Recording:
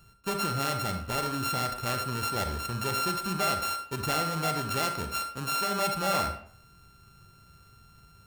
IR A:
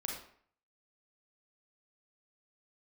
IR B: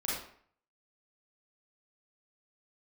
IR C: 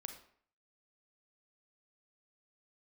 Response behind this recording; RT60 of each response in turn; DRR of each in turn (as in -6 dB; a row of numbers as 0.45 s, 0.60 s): C; 0.55 s, 0.55 s, 0.55 s; -0.5 dB, -7.0 dB, 6.0 dB